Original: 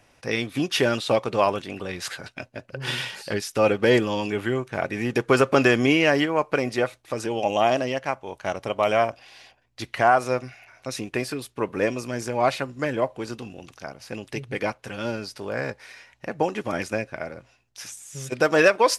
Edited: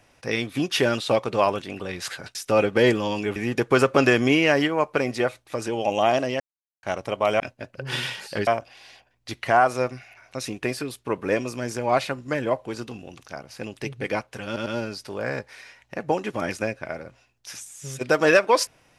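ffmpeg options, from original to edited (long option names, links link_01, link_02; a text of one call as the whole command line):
ffmpeg -i in.wav -filter_complex "[0:a]asplit=9[link_01][link_02][link_03][link_04][link_05][link_06][link_07][link_08][link_09];[link_01]atrim=end=2.352[link_10];[link_02]atrim=start=3.418:end=4.432[link_11];[link_03]atrim=start=4.938:end=7.98,asetpts=PTS-STARTPTS,afade=type=out:start_time=3.038:duration=0.004:curve=hsin[link_12];[link_04]atrim=start=7.98:end=8.41,asetpts=PTS-STARTPTS,volume=0[link_13];[link_05]atrim=start=8.41:end=8.982,asetpts=PTS-STARTPTS,afade=type=in:duration=0.004:curve=hsin[link_14];[link_06]atrim=start=2.348:end=3.422[link_15];[link_07]atrim=start=8.978:end=15.072[link_16];[link_08]atrim=start=14.968:end=15.072[link_17];[link_09]atrim=start=14.968[link_18];[link_10][link_11]acrossfade=duration=0.004:curve1=hsin:curve2=hsin[link_19];[link_12][link_13][link_14]concat=n=3:v=0:a=1[link_20];[link_19][link_20]acrossfade=duration=0.004:curve1=hsin:curve2=hsin[link_21];[link_21][link_15]acrossfade=duration=0.004:curve1=hsin:curve2=hsin[link_22];[link_22][link_16]acrossfade=duration=0.004:curve1=hsin:curve2=hsin[link_23];[link_23][link_17]acrossfade=duration=0.004:curve1=hsin:curve2=hsin[link_24];[link_24][link_18]acrossfade=duration=0.004:curve1=hsin:curve2=hsin" out.wav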